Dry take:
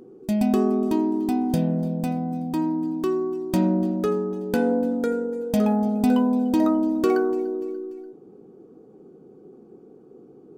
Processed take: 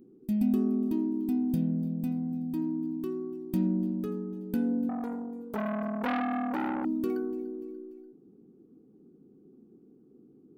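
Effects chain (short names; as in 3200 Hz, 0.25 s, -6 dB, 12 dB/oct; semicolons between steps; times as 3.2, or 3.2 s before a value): EQ curve 150 Hz 0 dB, 260 Hz +4 dB, 570 Hz -14 dB, 2800 Hz -7 dB, 7600 Hz -11 dB, 13000 Hz +1 dB; 4.89–6.85 core saturation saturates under 1300 Hz; gain -7.5 dB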